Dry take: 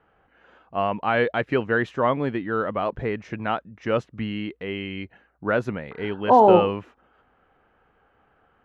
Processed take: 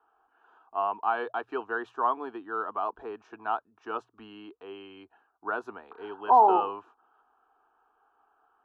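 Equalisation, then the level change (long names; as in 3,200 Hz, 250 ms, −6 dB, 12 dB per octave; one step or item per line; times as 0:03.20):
three-way crossover with the lows and the highs turned down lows −22 dB, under 460 Hz, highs −13 dB, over 2,400 Hz
mains-hum notches 60/120 Hz
phaser with its sweep stopped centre 550 Hz, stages 6
0.0 dB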